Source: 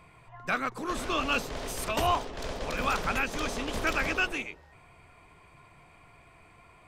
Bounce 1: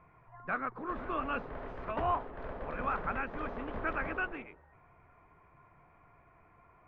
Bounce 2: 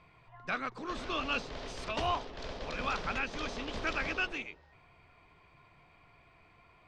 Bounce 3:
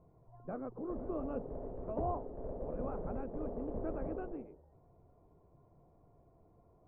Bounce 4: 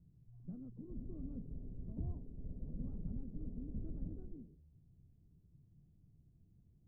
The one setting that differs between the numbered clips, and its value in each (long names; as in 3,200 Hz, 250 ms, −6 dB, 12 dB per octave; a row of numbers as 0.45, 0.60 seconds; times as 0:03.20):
transistor ladder low-pass, frequency: 2,000, 6,100, 730, 250 Hertz